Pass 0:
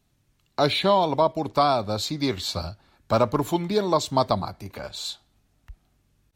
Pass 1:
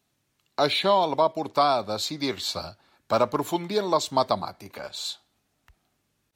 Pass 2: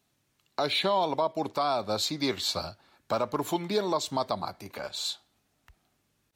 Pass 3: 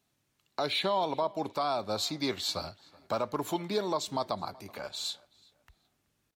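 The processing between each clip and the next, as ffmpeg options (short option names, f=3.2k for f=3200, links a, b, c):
-af "highpass=f=330:p=1"
-af "alimiter=limit=-16.5dB:level=0:latency=1:release=177"
-filter_complex "[0:a]asplit=2[a][b];[b]adelay=377,lowpass=f=3.9k:p=1,volume=-23.5dB,asplit=2[c][d];[d]adelay=377,lowpass=f=3.9k:p=1,volume=0.3[e];[a][c][e]amix=inputs=3:normalize=0,volume=-3dB"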